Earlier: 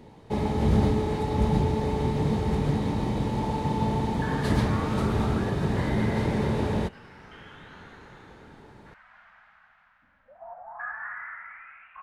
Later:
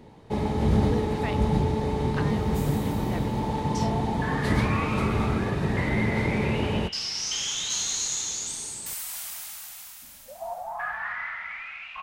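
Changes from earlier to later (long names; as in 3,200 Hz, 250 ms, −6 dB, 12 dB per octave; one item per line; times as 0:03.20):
speech: unmuted
second sound: remove transistor ladder low-pass 1,800 Hz, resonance 55%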